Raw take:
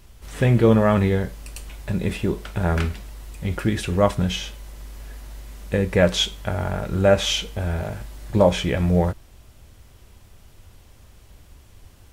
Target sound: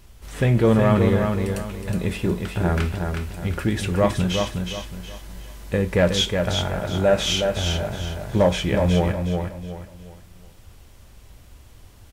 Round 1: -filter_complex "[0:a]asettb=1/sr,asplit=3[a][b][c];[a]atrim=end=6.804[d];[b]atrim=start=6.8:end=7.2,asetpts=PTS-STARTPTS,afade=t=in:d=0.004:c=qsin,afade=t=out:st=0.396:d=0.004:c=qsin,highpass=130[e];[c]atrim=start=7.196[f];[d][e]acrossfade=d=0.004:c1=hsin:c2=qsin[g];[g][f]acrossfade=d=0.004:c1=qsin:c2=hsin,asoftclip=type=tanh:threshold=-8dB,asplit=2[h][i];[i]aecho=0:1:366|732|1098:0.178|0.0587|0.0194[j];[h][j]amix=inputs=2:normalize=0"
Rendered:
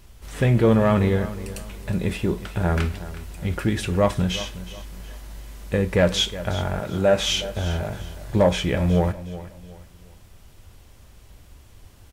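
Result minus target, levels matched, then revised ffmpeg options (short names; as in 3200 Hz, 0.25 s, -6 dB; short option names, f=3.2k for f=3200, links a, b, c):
echo-to-direct -10 dB
-filter_complex "[0:a]asettb=1/sr,asplit=3[a][b][c];[a]atrim=end=6.804[d];[b]atrim=start=6.8:end=7.2,asetpts=PTS-STARTPTS,afade=t=in:d=0.004:c=qsin,afade=t=out:st=0.396:d=0.004:c=qsin,highpass=130[e];[c]atrim=start=7.196[f];[d][e]acrossfade=d=0.004:c1=hsin:c2=qsin[g];[g][f]acrossfade=d=0.004:c1=qsin:c2=hsin,asoftclip=type=tanh:threshold=-8dB,asplit=2[h][i];[i]aecho=0:1:366|732|1098|1464:0.562|0.186|0.0612|0.0202[j];[h][j]amix=inputs=2:normalize=0"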